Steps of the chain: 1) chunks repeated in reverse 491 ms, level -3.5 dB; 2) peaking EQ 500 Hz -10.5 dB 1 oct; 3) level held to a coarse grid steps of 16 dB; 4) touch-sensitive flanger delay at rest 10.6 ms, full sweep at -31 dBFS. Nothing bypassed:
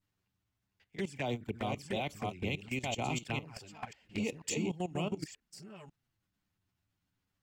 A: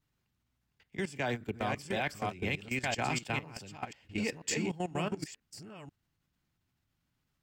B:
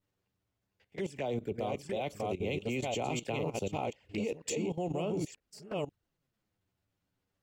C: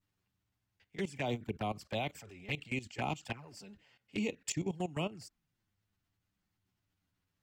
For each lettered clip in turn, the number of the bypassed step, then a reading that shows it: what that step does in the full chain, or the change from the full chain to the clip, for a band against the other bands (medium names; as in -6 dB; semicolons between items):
4, 2 kHz band +4.0 dB; 2, 500 Hz band +5.5 dB; 1, crest factor change +2.5 dB